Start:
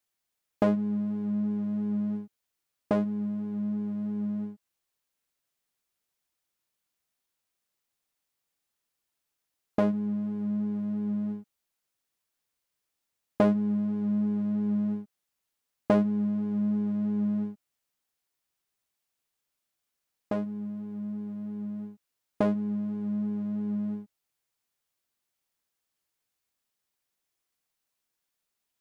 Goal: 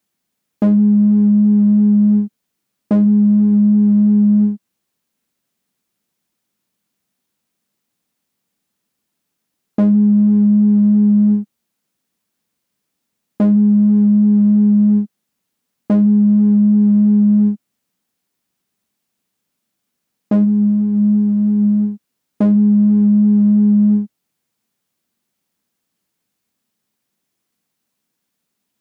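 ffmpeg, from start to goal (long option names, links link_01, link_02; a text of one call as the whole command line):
ffmpeg -i in.wav -af "highpass=47,equalizer=frequency=210:width=1.1:gain=14.5,alimiter=limit=-15dB:level=0:latency=1:release=33,volume=7.5dB" out.wav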